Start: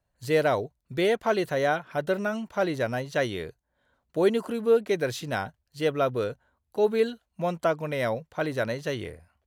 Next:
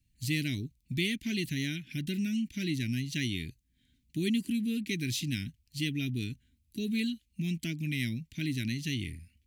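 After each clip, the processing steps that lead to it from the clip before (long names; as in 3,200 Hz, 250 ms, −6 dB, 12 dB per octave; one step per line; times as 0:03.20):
elliptic band-stop filter 280–2,300 Hz, stop band 40 dB
in parallel at +1.5 dB: downward compressor, threshold −42 dBFS, peak gain reduction 14 dB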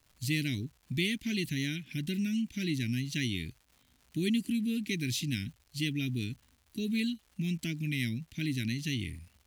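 surface crackle 270 per second −51 dBFS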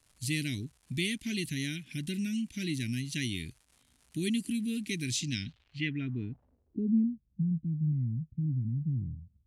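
low-pass filter sweep 10,000 Hz → 150 Hz, 0:05.04–0:07.20
level −1.5 dB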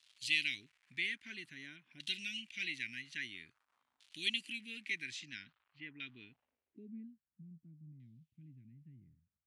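first difference
auto-filter low-pass saw down 0.5 Hz 950–3,600 Hz
level +7.5 dB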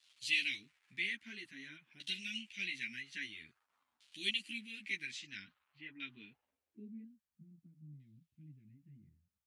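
string-ensemble chorus
level +2.5 dB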